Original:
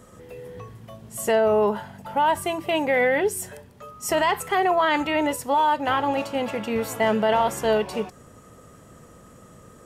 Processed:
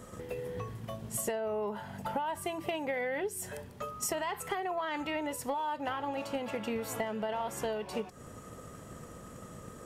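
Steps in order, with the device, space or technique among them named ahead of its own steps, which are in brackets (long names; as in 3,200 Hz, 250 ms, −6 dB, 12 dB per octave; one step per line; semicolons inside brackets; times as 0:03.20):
drum-bus smash (transient designer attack +6 dB, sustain +1 dB; downward compressor 6 to 1, threshold −32 dBFS, peak gain reduction 18 dB; soft clipping −20 dBFS, distortion −26 dB)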